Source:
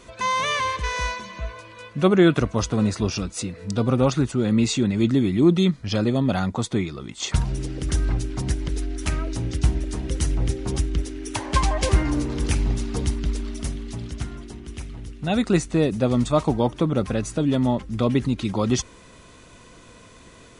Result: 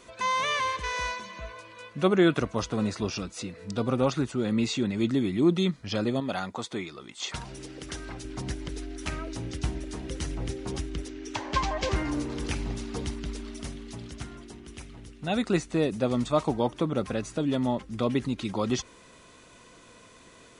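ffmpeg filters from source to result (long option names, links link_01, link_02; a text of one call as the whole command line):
ffmpeg -i in.wav -filter_complex "[0:a]asettb=1/sr,asplit=3[link_01][link_02][link_03];[link_01]atrim=end=6.204[link_04];[link_02]atrim=start=6.2:end=8.25,asetpts=PTS-STARTPTS,afade=type=in:duration=0.004:curve=qsin,afade=type=out:start_time=2.046:duration=0.004:curve=qsin,lowshelf=frequency=250:gain=-10[link_05];[link_03]atrim=start=8.246[link_06];[link_04][link_05]acrossfade=duration=0.004:curve1=hsin:curve2=qsin[link_07];[link_07][link_06]acrossfade=duration=0.004:curve1=qsin:curve2=hsin,asettb=1/sr,asplit=3[link_08][link_09][link_10];[link_08]atrim=end=11.084[link_11];[link_09]atrim=start=11.08:end=11.96,asetpts=PTS-STARTPTS,afade=type=in:duration=0.004:curve=qsin,afade=type=out:start_time=0.876:duration=0.004:curve=qsin,lowpass=frequency=6900:width=0.5412,lowpass=frequency=6900:width=1.3066[link_12];[link_10]atrim=start=11.956[link_13];[link_11][link_12]acrossfade=duration=0.004:curve1=hsin:curve2=qsin[link_14];[link_14][link_13]acrossfade=duration=0.004:curve1=qsin:curve2=hsin,acrossover=split=5800[link_15][link_16];[link_16]acompressor=threshold=-42dB:ratio=4:attack=1:release=60[link_17];[link_15][link_17]amix=inputs=2:normalize=0,lowshelf=frequency=150:gain=-9.5,volume=-3.5dB" out.wav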